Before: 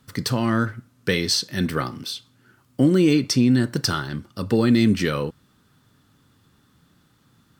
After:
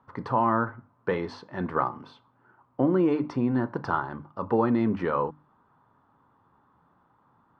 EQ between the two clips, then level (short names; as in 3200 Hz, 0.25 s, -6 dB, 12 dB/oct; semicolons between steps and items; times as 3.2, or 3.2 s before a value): synth low-pass 950 Hz, resonance Q 3.8; low shelf 380 Hz -10.5 dB; notches 50/100/150/200/250/300 Hz; 0.0 dB